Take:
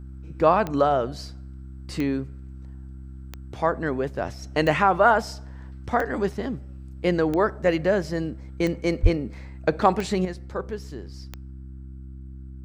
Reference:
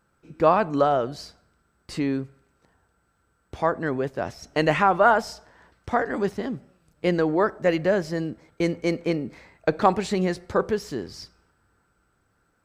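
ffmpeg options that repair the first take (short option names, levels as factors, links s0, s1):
-filter_complex "[0:a]adeclick=t=4,bandreject=f=65.6:t=h:w=4,bandreject=f=131.2:t=h:w=4,bandreject=f=196.8:t=h:w=4,bandreject=f=262.4:t=h:w=4,bandreject=f=328:t=h:w=4,asplit=3[s0][s1][s2];[s0]afade=t=out:st=9.02:d=0.02[s3];[s1]highpass=f=140:w=0.5412,highpass=f=140:w=1.3066,afade=t=in:st=9.02:d=0.02,afade=t=out:st=9.14:d=0.02[s4];[s2]afade=t=in:st=9.14:d=0.02[s5];[s3][s4][s5]amix=inputs=3:normalize=0,asetnsamples=n=441:p=0,asendcmd='10.25 volume volume 8dB',volume=1"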